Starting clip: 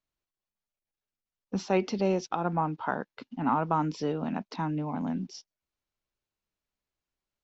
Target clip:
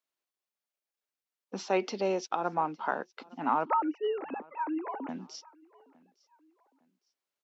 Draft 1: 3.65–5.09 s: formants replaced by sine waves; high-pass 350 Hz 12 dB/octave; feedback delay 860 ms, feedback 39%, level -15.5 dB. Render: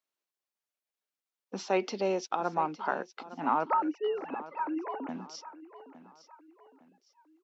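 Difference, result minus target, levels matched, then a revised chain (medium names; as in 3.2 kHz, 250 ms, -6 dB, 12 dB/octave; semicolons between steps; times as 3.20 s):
echo-to-direct +9.5 dB
3.65–5.09 s: formants replaced by sine waves; high-pass 350 Hz 12 dB/octave; feedback delay 860 ms, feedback 39%, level -25 dB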